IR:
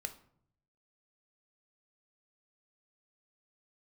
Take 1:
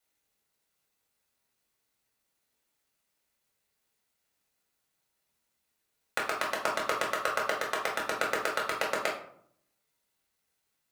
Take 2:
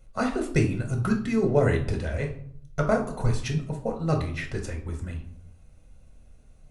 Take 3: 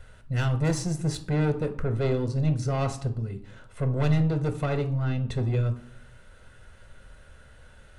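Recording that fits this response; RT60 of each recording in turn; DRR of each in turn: 3; 0.65, 0.65, 0.65 seconds; −3.0, 2.0, 7.5 decibels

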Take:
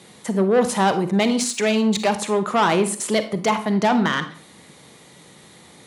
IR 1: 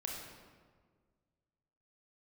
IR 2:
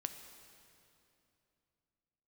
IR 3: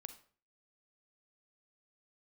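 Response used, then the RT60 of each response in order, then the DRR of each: 3; 1.7, 2.8, 0.45 seconds; −1.5, 7.0, 9.5 decibels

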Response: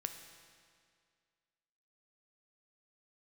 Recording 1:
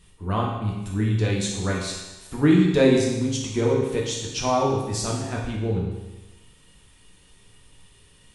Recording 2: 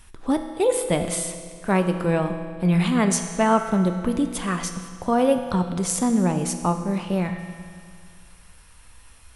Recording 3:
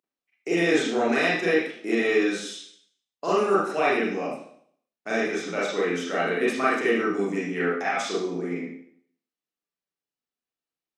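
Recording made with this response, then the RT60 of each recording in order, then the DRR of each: 2; 1.1, 2.1, 0.60 seconds; −3.0, 6.0, −8.5 decibels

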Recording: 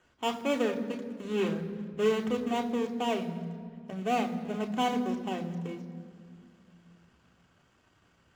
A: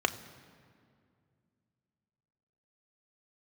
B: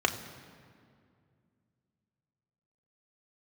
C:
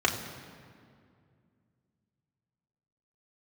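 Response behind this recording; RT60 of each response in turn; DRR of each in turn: B; 2.3, 2.3, 2.3 seconds; 8.0, 4.0, −1.0 decibels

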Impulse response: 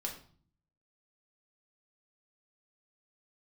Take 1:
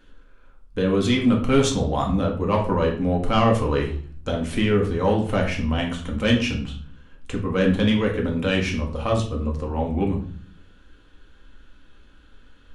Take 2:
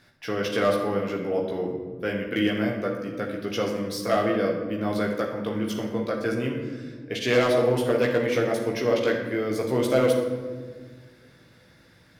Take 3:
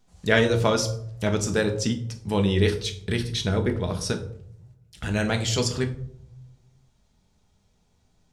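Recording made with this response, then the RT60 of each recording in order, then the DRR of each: 1; 0.45, 1.6, 0.70 seconds; −0.5, −1.5, 4.0 decibels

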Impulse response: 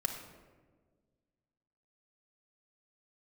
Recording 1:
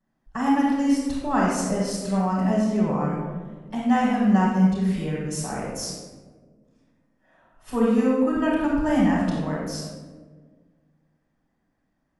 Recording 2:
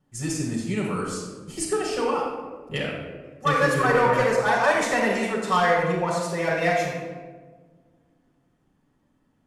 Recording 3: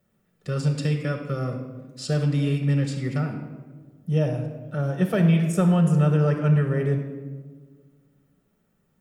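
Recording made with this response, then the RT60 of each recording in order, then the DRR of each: 3; 1.5, 1.5, 1.5 seconds; −11.5, −4.0, 4.0 decibels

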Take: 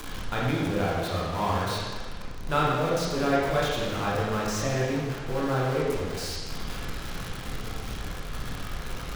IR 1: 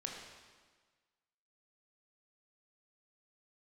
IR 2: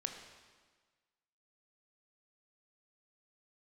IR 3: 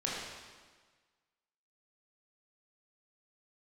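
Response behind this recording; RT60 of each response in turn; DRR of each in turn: 3; 1.5, 1.5, 1.5 seconds; −0.5, 4.0, −6.0 decibels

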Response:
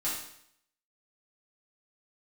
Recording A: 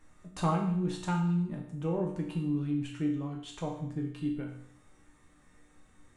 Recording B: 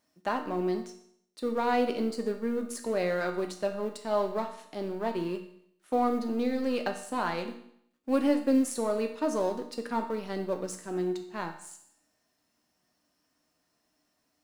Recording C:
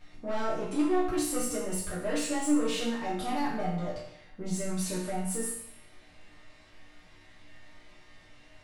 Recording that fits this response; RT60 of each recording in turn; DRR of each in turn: C; 0.70, 0.70, 0.70 seconds; −1.5, 4.0, −9.0 decibels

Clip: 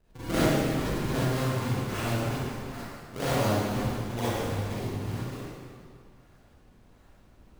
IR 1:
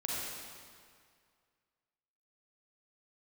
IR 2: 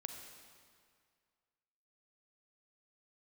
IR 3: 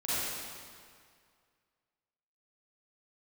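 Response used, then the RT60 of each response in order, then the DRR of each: 3; 2.1, 2.1, 2.1 seconds; −5.0, 4.5, −12.0 decibels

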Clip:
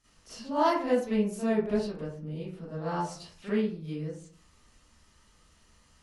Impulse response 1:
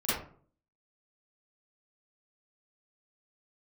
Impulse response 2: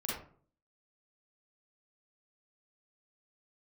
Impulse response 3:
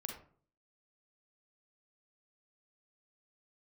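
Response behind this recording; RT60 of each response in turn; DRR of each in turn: 1; 0.50, 0.50, 0.50 seconds; −13.0, −6.0, 2.0 decibels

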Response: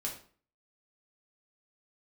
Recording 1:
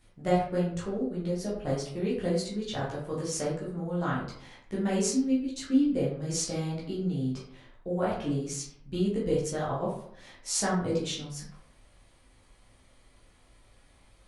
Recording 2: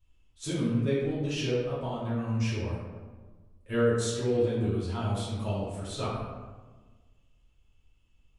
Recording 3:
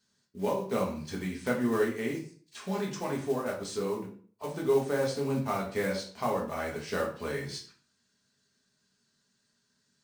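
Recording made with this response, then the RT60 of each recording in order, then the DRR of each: 3; 0.65, 1.3, 0.45 seconds; −7.0, −10.5, −2.0 decibels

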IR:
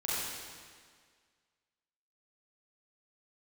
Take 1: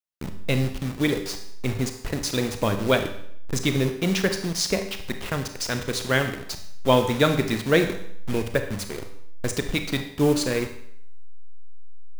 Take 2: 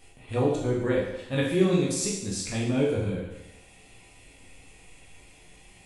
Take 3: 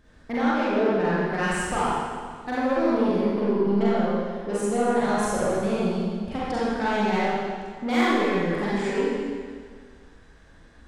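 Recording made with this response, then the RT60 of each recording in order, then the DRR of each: 3; 0.65, 0.90, 1.8 seconds; 6.5, −4.0, −9.0 decibels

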